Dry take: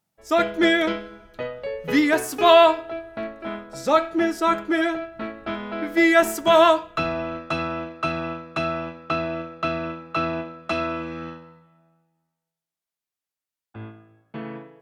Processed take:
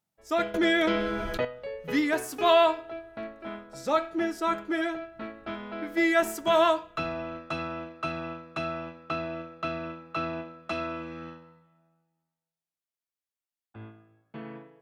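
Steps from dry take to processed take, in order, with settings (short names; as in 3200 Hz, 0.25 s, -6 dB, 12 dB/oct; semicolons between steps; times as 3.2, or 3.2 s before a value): 0.54–1.45 fast leveller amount 70%; gain -7 dB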